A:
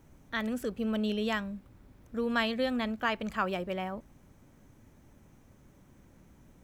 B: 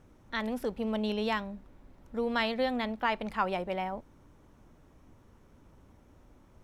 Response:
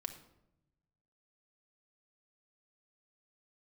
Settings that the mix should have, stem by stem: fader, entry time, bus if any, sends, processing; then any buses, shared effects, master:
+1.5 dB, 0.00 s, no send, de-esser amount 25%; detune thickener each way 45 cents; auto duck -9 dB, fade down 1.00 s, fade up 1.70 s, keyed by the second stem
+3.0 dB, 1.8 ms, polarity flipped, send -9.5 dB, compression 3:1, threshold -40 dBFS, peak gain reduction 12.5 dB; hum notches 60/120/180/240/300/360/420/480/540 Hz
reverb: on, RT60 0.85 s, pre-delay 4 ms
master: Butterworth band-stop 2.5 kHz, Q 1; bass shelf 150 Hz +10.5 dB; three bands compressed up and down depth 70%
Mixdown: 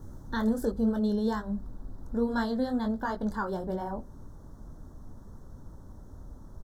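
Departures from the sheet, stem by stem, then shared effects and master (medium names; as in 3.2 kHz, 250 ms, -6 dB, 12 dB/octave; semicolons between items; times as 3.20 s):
stem A +1.5 dB -> +9.5 dB; master: missing three bands compressed up and down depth 70%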